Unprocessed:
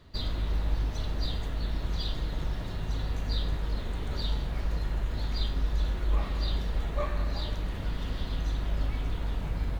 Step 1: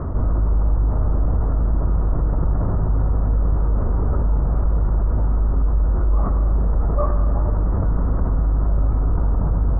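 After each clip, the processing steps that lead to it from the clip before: elliptic low-pass 1300 Hz, stop band 70 dB; bell 71 Hz +4.5 dB 1.9 oct; fast leveller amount 70%; gain +5 dB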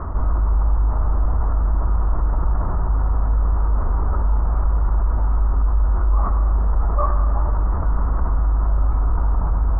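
graphic EQ 125/250/500/1000 Hz -11/-5/-7/+5 dB; gain +2 dB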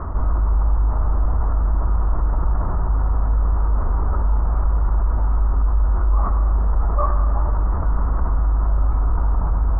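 nothing audible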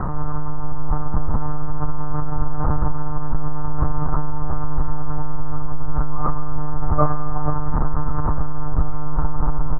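doubler 32 ms -10.5 dB; dark delay 0.491 s, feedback 43%, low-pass 1100 Hz, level -12 dB; monotone LPC vocoder at 8 kHz 150 Hz; gain +4 dB

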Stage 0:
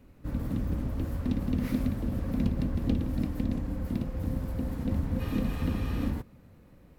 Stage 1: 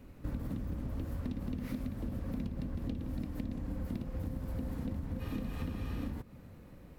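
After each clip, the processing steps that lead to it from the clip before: compressor 12:1, threshold -36 dBFS, peak gain reduction 15.5 dB; gain +2.5 dB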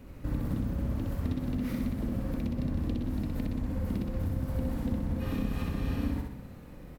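feedback echo 63 ms, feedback 50%, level -3 dB; gain +4 dB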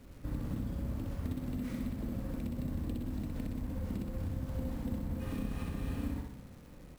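sample-rate reducer 12000 Hz, jitter 0%; crackle 440/s -47 dBFS; gain -5.5 dB

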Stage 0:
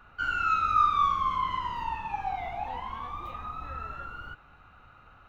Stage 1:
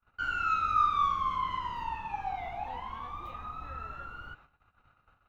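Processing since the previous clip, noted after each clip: gate -52 dBFS, range -30 dB; gain -3 dB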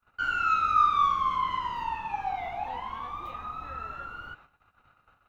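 low shelf 140 Hz -7 dB; gain +4 dB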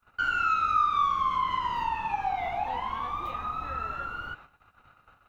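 compressor 2:1, threshold -31 dBFS, peak gain reduction 7.5 dB; gain +4.5 dB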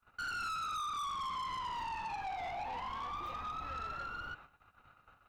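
soft clip -32 dBFS, distortion -7 dB; gain -4.5 dB

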